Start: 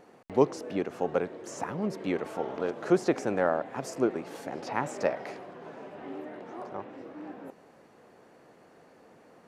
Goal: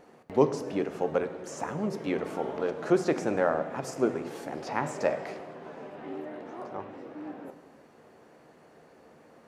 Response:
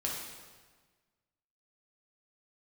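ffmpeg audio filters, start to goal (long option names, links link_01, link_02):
-filter_complex "[0:a]asplit=2[link_01][link_02];[1:a]atrim=start_sample=2205,lowshelf=frequency=170:gain=7.5,adelay=13[link_03];[link_02][link_03]afir=irnorm=-1:irlink=0,volume=-13dB[link_04];[link_01][link_04]amix=inputs=2:normalize=0"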